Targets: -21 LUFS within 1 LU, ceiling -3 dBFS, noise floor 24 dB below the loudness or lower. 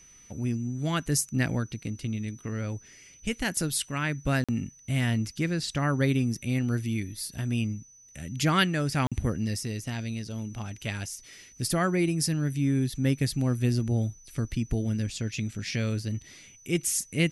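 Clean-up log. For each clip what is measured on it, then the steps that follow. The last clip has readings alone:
dropouts 2; longest dropout 46 ms; steady tone 6000 Hz; tone level -52 dBFS; loudness -29.0 LUFS; peak -8.5 dBFS; loudness target -21.0 LUFS
-> interpolate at 4.44/9.07, 46 ms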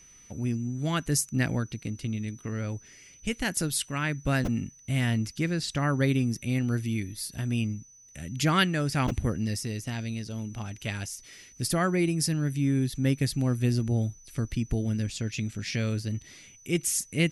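dropouts 0; steady tone 6000 Hz; tone level -52 dBFS
-> notch 6000 Hz, Q 30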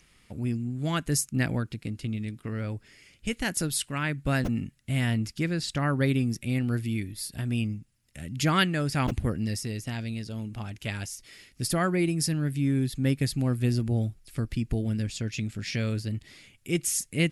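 steady tone none; loudness -29.0 LUFS; peak -8.5 dBFS; loudness target -21.0 LUFS
-> gain +8 dB; limiter -3 dBFS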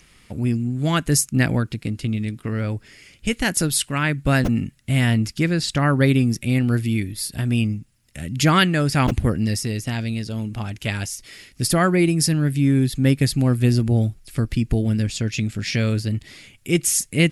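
loudness -21.0 LUFS; peak -3.0 dBFS; noise floor -54 dBFS

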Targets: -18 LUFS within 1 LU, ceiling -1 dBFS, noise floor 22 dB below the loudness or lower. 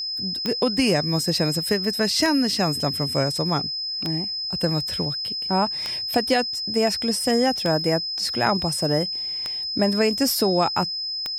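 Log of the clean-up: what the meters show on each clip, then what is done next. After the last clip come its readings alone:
clicks 7; steady tone 5100 Hz; tone level -26 dBFS; loudness -22.0 LUFS; peak -5.0 dBFS; loudness target -18.0 LUFS
-> de-click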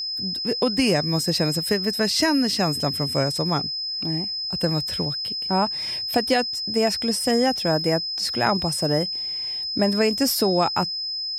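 clicks 0; steady tone 5100 Hz; tone level -26 dBFS
-> notch 5100 Hz, Q 30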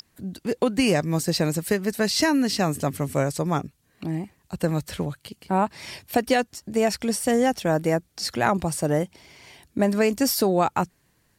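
steady tone none; loudness -24.0 LUFS; peak -5.5 dBFS; loudness target -18.0 LUFS
-> gain +6 dB; limiter -1 dBFS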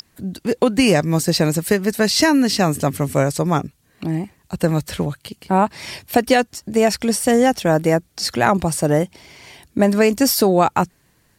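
loudness -18.0 LUFS; peak -1.0 dBFS; noise floor -60 dBFS

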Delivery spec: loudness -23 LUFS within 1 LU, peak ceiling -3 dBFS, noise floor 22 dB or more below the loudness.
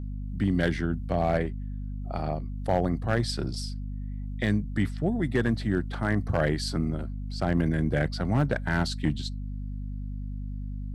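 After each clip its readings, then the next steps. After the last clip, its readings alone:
clipped 0.3%; flat tops at -15.5 dBFS; hum 50 Hz; harmonics up to 250 Hz; hum level -31 dBFS; loudness -29.0 LUFS; peak -15.5 dBFS; loudness target -23.0 LUFS
-> clip repair -15.5 dBFS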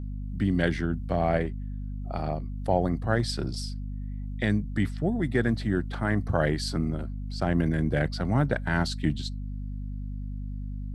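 clipped 0.0%; hum 50 Hz; harmonics up to 250 Hz; hum level -31 dBFS
-> de-hum 50 Hz, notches 5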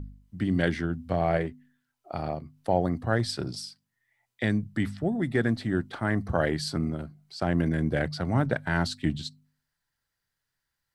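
hum none; loudness -28.5 LUFS; peak -9.5 dBFS; loudness target -23.0 LUFS
-> gain +5.5 dB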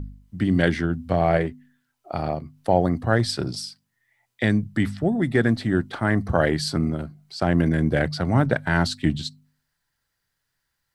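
loudness -23.0 LUFS; peak -4.0 dBFS; noise floor -78 dBFS

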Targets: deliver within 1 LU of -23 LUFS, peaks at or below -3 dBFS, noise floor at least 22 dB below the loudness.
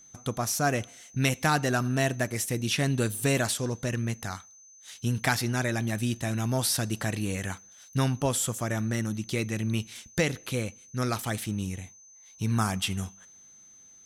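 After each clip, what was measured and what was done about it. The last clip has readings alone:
steady tone 6200 Hz; tone level -51 dBFS; loudness -29.0 LUFS; peak -11.5 dBFS; loudness target -23.0 LUFS
-> notch 6200 Hz, Q 30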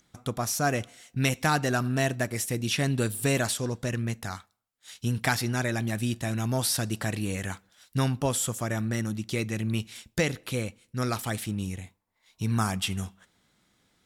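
steady tone none; loudness -29.0 LUFS; peak -11.5 dBFS; loudness target -23.0 LUFS
-> gain +6 dB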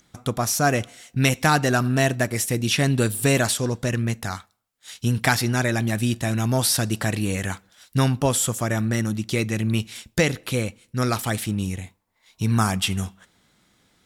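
loudness -23.0 LUFS; peak -5.5 dBFS; noise floor -66 dBFS

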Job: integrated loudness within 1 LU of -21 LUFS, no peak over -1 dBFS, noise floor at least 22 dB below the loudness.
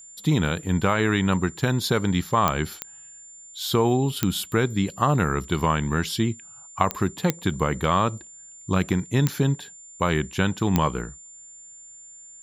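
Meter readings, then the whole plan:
clicks 7; steady tone 7200 Hz; tone level -43 dBFS; loudness -24.0 LUFS; peak -5.0 dBFS; loudness target -21.0 LUFS
-> de-click; notch 7200 Hz, Q 30; gain +3 dB

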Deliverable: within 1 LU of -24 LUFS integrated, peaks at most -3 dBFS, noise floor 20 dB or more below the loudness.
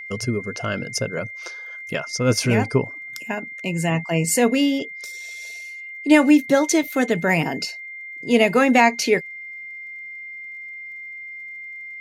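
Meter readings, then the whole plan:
ticks 28/s; steady tone 2100 Hz; tone level -33 dBFS; loudness -20.5 LUFS; peak -3.0 dBFS; loudness target -24.0 LUFS
-> de-click; notch 2100 Hz, Q 30; gain -3.5 dB

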